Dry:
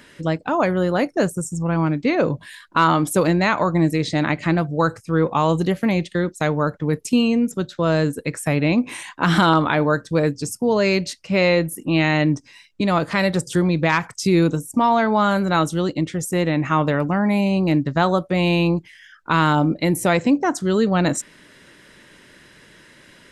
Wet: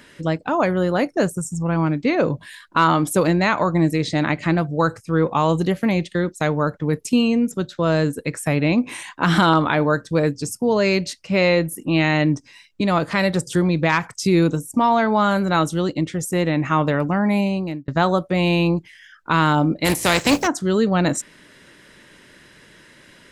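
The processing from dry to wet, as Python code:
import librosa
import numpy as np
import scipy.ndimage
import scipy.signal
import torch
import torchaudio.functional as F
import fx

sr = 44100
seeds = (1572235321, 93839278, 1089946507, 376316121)

y = fx.spec_box(x, sr, start_s=1.39, length_s=0.22, low_hz=270.0, high_hz=680.0, gain_db=-8)
y = fx.spec_flatten(y, sr, power=0.48, at=(19.84, 20.46), fade=0.02)
y = fx.edit(y, sr, fx.fade_out_span(start_s=17.39, length_s=0.49), tone=tone)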